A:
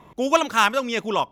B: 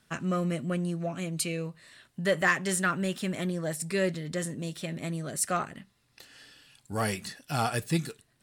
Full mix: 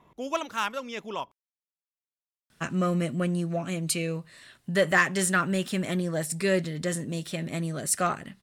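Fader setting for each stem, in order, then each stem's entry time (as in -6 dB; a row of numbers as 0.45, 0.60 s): -11.0, +3.0 dB; 0.00, 2.50 s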